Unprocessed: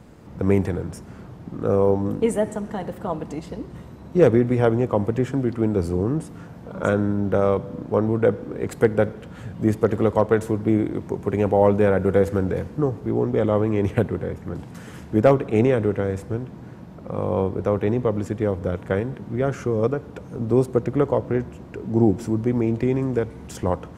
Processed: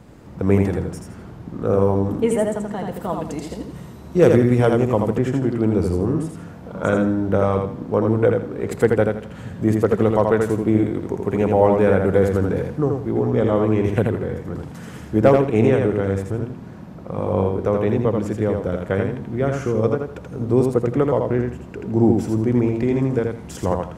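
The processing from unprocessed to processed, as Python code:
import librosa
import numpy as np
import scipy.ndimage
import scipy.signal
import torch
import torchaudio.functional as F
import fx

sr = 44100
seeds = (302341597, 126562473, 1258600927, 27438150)

p1 = fx.high_shelf(x, sr, hz=4300.0, db=8.0, at=(2.94, 5.1))
p2 = p1 + fx.echo_feedback(p1, sr, ms=82, feedback_pct=26, wet_db=-4.0, dry=0)
y = p2 * 10.0 ** (1.0 / 20.0)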